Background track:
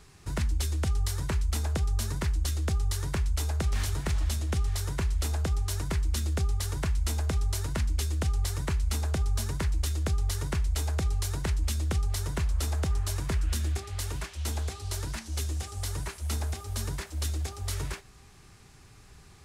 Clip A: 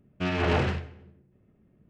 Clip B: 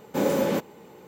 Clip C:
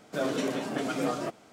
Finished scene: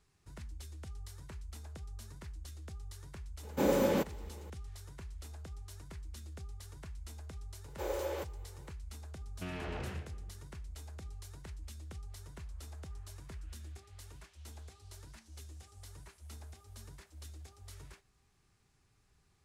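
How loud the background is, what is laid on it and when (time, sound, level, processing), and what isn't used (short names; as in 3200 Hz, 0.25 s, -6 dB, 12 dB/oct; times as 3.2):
background track -18.5 dB
3.43 add B -5 dB
7.64 add B -11.5 dB + elliptic high-pass 350 Hz
9.21 add A -8 dB + compressor, threshold -29 dBFS
not used: C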